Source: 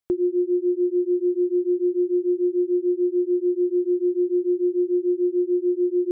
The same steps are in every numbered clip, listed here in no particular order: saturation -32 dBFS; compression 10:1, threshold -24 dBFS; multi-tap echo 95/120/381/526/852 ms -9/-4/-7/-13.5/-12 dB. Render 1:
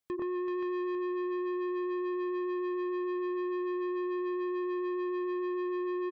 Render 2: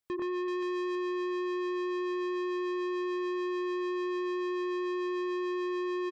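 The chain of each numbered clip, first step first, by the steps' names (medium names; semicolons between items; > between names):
compression > multi-tap echo > saturation; multi-tap echo > saturation > compression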